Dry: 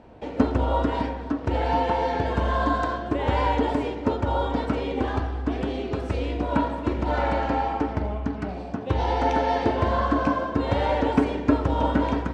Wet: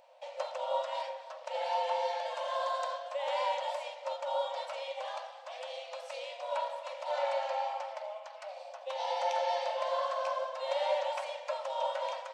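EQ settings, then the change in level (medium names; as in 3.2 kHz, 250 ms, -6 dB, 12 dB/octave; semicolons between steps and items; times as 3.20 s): brick-wall FIR high-pass 510 Hz; peaking EQ 730 Hz -5.5 dB 0.51 oct; peaking EQ 1.5 kHz -13.5 dB 1.2 oct; 0.0 dB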